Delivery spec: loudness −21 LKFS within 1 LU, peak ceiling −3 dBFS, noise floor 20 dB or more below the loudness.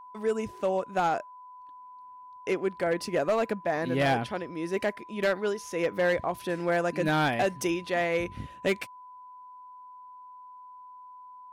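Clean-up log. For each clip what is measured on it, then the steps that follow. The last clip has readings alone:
share of clipped samples 1.1%; peaks flattened at −19.5 dBFS; interfering tone 1,000 Hz; level of the tone −45 dBFS; integrated loudness −29.0 LKFS; sample peak −19.5 dBFS; target loudness −21.0 LKFS
→ clipped peaks rebuilt −19.5 dBFS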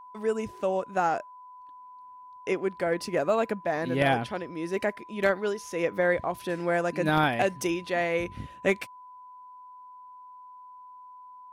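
share of clipped samples 0.0%; interfering tone 1,000 Hz; level of the tone −45 dBFS
→ notch filter 1,000 Hz, Q 30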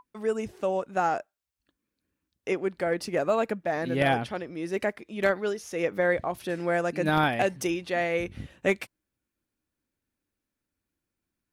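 interfering tone none found; integrated loudness −28.0 LKFS; sample peak −10.5 dBFS; target loudness −21.0 LKFS
→ level +7 dB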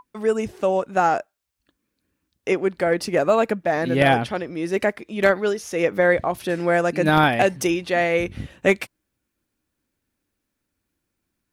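integrated loudness −21.0 LKFS; sample peak −3.5 dBFS; background noise floor −79 dBFS

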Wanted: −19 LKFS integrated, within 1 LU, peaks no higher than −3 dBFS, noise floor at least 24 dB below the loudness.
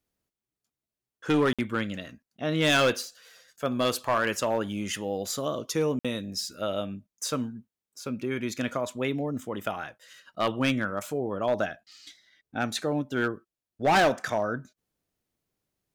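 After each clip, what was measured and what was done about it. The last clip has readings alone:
share of clipped samples 0.7%; peaks flattened at −17.5 dBFS; number of dropouts 2; longest dropout 56 ms; integrated loudness −28.5 LKFS; sample peak −17.5 dBFS; target loudness −19.0 LKFS
→ clipped peaks rebuilt −17.5 dBFS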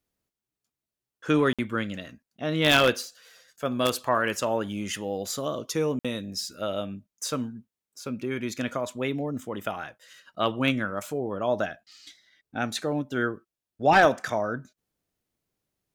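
share of clipped samples 0.0%; number of dropouts 2; longest dropout 56 ms
→ repair the gap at 0:01.53/0:05.99, 56 ms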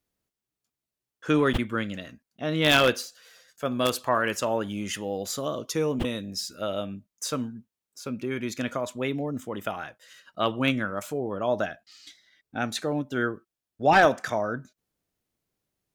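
number of dropouts 0; integrated loudness −27.5 LKFS; sample peak −8.5 dBFS; target loudness −19.0 LKFS
→ level +8.5 dB
brickwall limiter −3 dBFS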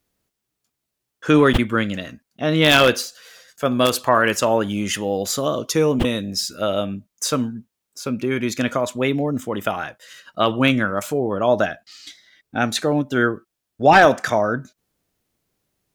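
integrated loudness −19.5 LKFS; sample peak −3.0 dBFS; background noise floor −81 dBFS

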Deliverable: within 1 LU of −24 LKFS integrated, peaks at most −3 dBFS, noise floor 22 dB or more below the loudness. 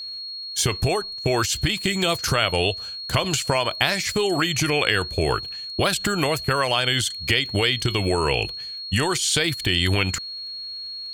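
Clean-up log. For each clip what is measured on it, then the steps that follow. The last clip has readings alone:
crackle rate 19 per second; interfering tone 4,300 Hz; level of the tone −31 dBFS; integrated loudness −22.5 LKFS; sample peak −2.5 dBFS; target loudness −24.0 LKFS
→ click removal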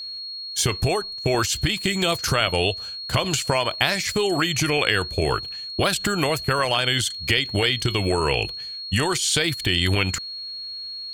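crackle rate 0.45 per second; interfering tone 4,300 Hz; level of the tone −31 dBFS
→ notch filter 4,300 Hz, Q 30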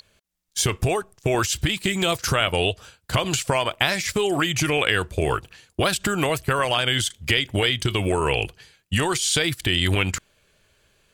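interfering tone none found; integrated loudness −22.5 LKFS; sample peak −2.5 dBFS; target loudness −24.0 LKFS
→ level −1.5 dB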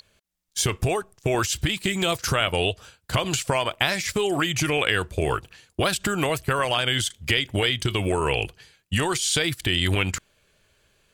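integrated loudness −24.0 LKFS; sample peak −4.0 dBFS; background noise floor −68 dBFS

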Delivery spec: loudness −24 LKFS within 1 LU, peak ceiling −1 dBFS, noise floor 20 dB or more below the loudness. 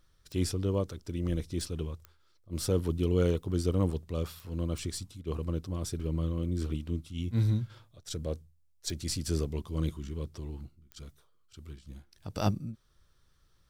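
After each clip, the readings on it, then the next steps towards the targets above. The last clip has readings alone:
number of clicks 7; integrated loudness −33.5 LKFS; sample peak −13.0 dBFS; target loudness −24.0 LKFS
→ click removal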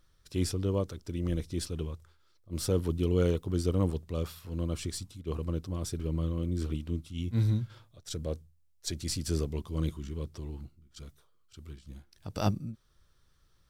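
number of clicks 0; integrated loudness −33.5 LKFS; sample peak −13.0 dBFS; target loudness −24.0 LKFS
→ level +9.5 dB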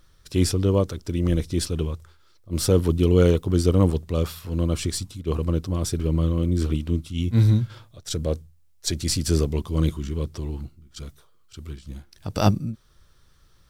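integrated loudness −24.0 LKFS; sample peak −3.5 dBFS; background noise floor −56 dBFS

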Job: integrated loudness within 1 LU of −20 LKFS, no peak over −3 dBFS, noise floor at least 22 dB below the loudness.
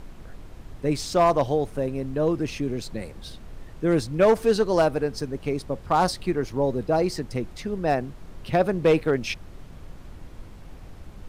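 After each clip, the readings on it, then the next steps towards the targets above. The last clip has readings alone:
share of clipped samples 0.4%; peaks flattened at −12.0 dBFS; background noise floor −44 dBFS; target noise floor −47 dBFS; integrated loudness −24.5 LKFS; sample peak −12.0 dBFS; target loudness −20.0 LKFS
→ clipped peaks rebuilt −12 dBFS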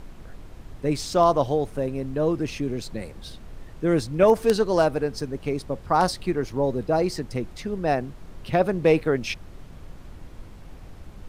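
share of clipped samples 0.0%; background noise floor −44 dBFS; target noise floor −46 dBFS
→ noise reduction from a noise print 6 dB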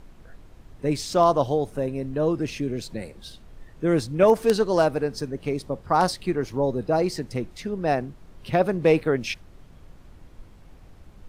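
background noise floor −50 dBFS; integrated loudness −24.0 LKFS; sample peak −3.0 dBFS; target loudness −20.0 LKFS
→ level +4 dB
brickwall limiter −3 dBFS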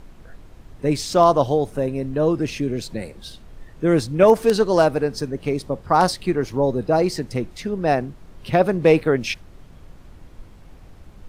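integrated loudness −20.0 LKFS; sample peak −3.0 dBFS; background noise floor −46 dBFS

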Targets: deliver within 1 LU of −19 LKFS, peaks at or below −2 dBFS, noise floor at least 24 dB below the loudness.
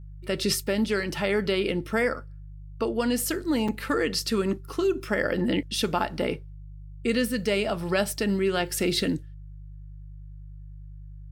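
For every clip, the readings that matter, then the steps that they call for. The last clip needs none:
number of dropouts 1; longest dropout 4.8 ms; mains hum 50 Hz; hum harmonics up to 150 Hz; level of the hum −39 dBFS; integrated loudness −26.5 LKFS; sample peak −9.5 dBFS; target loudness −19.0 LKFS
→ repair the gap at 0:03.68, 4.8 ms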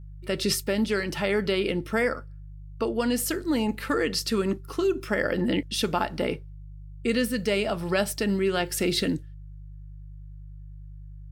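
number of dropouts 0; mains hum 50 Hz; hum harmonics up to 150 Hz; level of the hum −39 dBFS
→ hum removal 50 Hz, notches 3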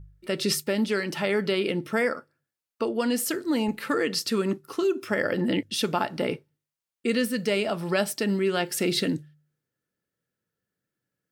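mains hum none found; integrated loudness −26.5 LKFS; sample peak −10.0 dBFS; target loudness −19.0 LKFS
→ level +7.5 dB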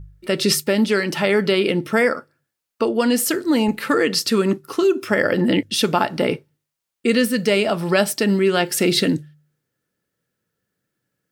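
integrated loudness −19.0 LKFS; sample peak −2.5 dBFS; background noise floor −82 dBFS

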